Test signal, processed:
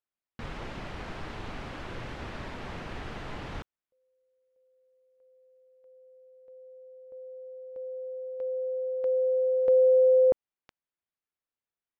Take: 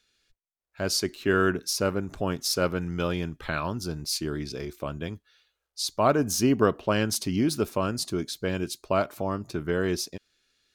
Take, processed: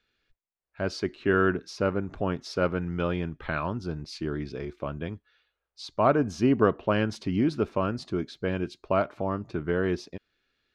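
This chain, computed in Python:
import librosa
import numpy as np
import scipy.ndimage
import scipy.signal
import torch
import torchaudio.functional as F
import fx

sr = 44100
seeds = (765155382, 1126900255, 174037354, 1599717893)

y = scipy.signal.sosfilt(scipy.signal.butter(2, 2600.0, 'lowpass', fs=sr, output='sos'), x)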